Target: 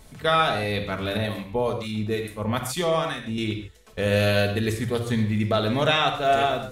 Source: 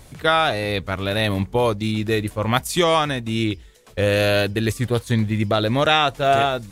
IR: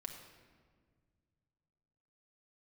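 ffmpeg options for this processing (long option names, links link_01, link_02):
-filter_complex "[0:a]asettb=1/sr,asplit=3[link_01][link_02][link_03];[link_01]atrim=end=1.174[link_04];[link_02]atrim=start=1.17:end=3.38,asetpts=PTS-STARTPTS,afade=type=in:duration=0.004:curve=qsin,afade=type=out:start_time=2.206:duration=0.004:curve=qsin,acrossover=split=1000[link_05][link_06];[link_05]aeval=exprs='val(0)*(1-0.7/2+0.7/2*cos(2*PI*2.3*n/s))':channel_layout=same[link_07];[link_06]aeval=exprs='val(0)*(1-0.7/2-0.7/2*cos(2*PI*2.3*n/s))':channel_layout=same[link_08];[link_07][link_08]amix=inputs=2:normalize=0[link_09];[link_03]atrim=start=3.376[link_10];[link_04][link_09]acrossfade=duration=0.004:curve1=hsin:curve2=qsin[link_11];[link_11][link_10]acrossfade=duration=0.004:curve1=qsin:curve2=hsin[link_12];[1:a]atrim=start_sample=2205,afade=type=out:start_time=0.2:duration=0.01,atrim=end_sample=9261[link_13];[link_12][link_13]afir=irnorm=-1:irlink=0"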